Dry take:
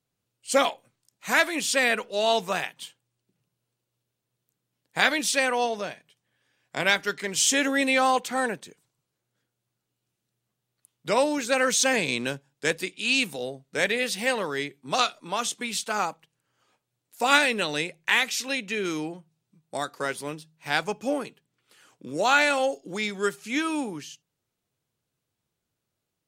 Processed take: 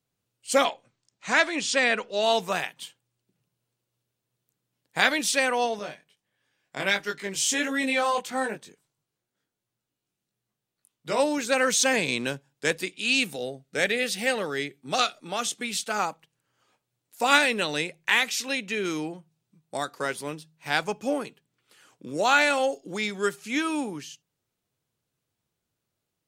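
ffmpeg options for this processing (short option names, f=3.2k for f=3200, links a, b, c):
-filter_complex "[0:a]asettb=1/sr,asplit=3[a][b][c];[a]atrim=end=0.644[d];[b]atrim=start=0.64:end=2.23,asetpts=PTS-STARTPTS,afade=t=in:d=0.004:c=qsin,afade=t=out:st=1.586:d=0.004:c=qsin,lowpass=f=7.5k:w=0.5412,lowpass=f=7.5k:w=1.3066[e];[c]atrim=start=2.226[f];[d][e]acrossfade=d=0.004:c1=hsin:c2=qsin[g];[g][f]acrossfade=d=0.004:c1=qsin:c2=hsin,asettb=1/sr,asplit=3[h][i][j];[h]atrim=end=5.794[k];[i]atrim=start=5.79:end=11.2,asetpts=PTS-STARTPTS,afade=t=in:d=0.004:c=qsin,afade=t=out:st=5.406:d=0.004:c=qsin,flanger=delay=19:depth=2.3:speed=1.5[l];[j]atrim=start=11.196[m];[k][l]acrossfade=d=0.004:c1=hsin:c2=qsin[n];[n][m]acrossfade=d=0.004:c1=qsin:c2=hsin,asettb=1/sr,asplit=3[o][p][q];[o]atrim=end=13.054[r];[p]atrim=start=13.05:end=15.99,asetpts=PTS-STARTPTS,afade=t=in:d=0.004:c=qsin,afade=t=out:st=2.936:d=0.004:c=qsin,bandreject=f=1k:w=5.2[s];[q]atrim=start=15.986[t];[r][s]acrossfade=d=0.004:c1=hsin:c2=qsin[u];[u][t]acrossfade=d=0.004:c1=qsin:c2=hsin"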